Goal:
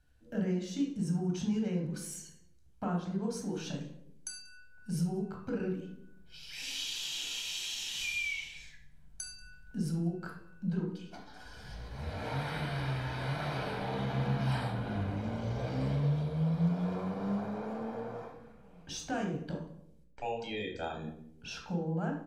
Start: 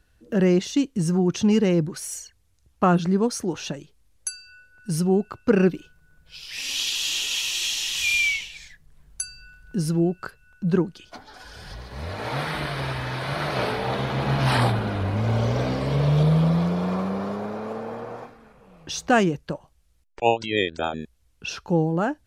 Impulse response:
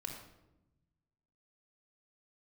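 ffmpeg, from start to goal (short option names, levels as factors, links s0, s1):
-filter_complex "[0:a]acompressor=threshold=0.0562:ratio=5,aecho=1:1:186:0.0668[s0];[1:a]atrim=start_sample=2205,asetrate=70560,aresample=44100[s1];[s0][s1]afir=irnorm=-1:irlink=0,volume=0.708"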